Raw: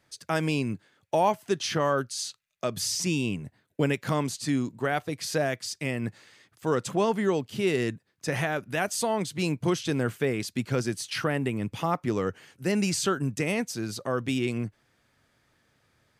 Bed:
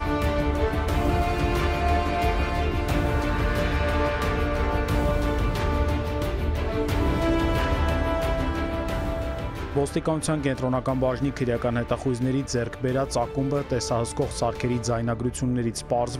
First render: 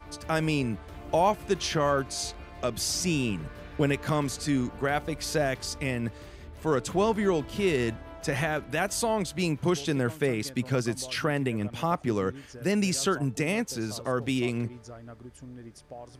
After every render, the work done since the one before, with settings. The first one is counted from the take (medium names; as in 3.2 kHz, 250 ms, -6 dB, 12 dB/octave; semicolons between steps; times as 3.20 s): add bed -19.5 dB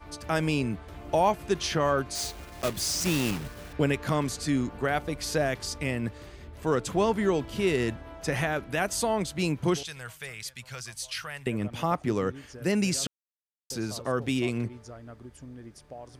2.15–3.73 s: block-companded coder 3-bit; 9.83–11.47 s: amplifier tone stack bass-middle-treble 10-0-10; 13.07–13.70 s: mute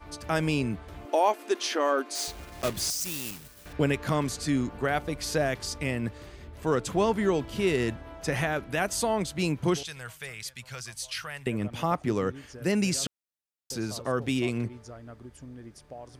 1.05–2.28 s: brick-wall FIR high-pass 230 Hz; 2.90–3.66 s: pre-emphasis filter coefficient 0.8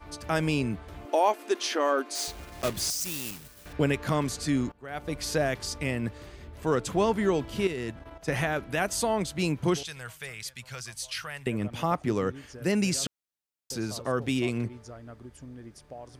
4.72–5.12 s: fade in quadratic, from -22.5 dB; 7.67–8.28 s: level held to a coarse grid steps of 11 dB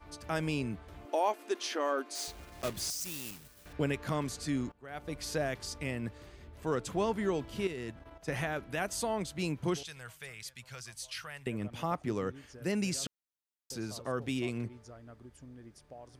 trim -6.5 dB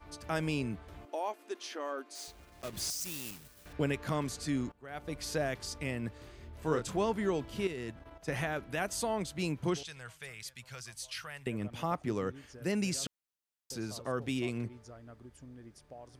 1.05–2.73 s: gain -6.5 dB; 6.18–6.98 s: doubling 26 ms -6 dB; 9.68–10.22 s: low-pass 9.4 kHz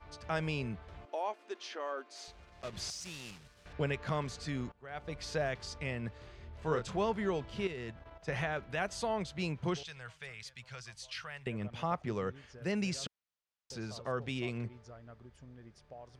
low-pass 5.1 kHz 12 dB/octave; peaking EQ 290 Hz -8.5 dB 0.5 oct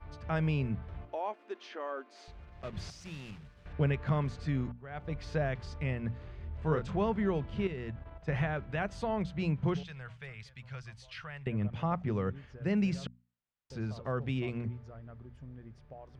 tone controls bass +9 dB, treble -13 dB; hum notches 60/120/180/240 Hz